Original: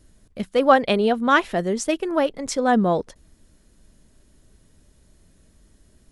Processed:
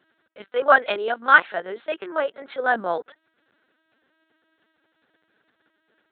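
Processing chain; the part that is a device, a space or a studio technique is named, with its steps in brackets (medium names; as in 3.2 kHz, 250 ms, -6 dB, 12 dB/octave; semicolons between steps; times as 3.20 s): 0.97–2.18 s: bass shelf 120 Hz -10.5 dB; talking toy (LPC vocoder at 8 kHz pitch kept; high-pass 470 Hz 12 dB/octave; peaking EQ 1.5 kHz +11 dB 0.42 oct); trim -1.5 dB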